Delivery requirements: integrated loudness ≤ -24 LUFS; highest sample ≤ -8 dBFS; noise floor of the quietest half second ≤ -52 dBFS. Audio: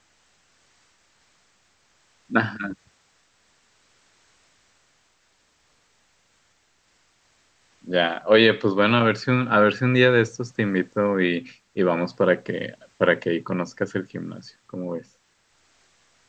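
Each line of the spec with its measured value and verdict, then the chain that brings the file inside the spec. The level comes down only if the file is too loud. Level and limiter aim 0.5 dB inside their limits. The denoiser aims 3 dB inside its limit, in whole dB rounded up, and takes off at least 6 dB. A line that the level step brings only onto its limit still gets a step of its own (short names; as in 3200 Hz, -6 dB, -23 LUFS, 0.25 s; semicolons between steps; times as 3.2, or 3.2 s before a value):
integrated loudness -22.0 LUFS: fail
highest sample -4.0 dBFS: fail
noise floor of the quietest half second -65 dBFS: OK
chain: gain -2.5 dB; limiter -8.5 dBFS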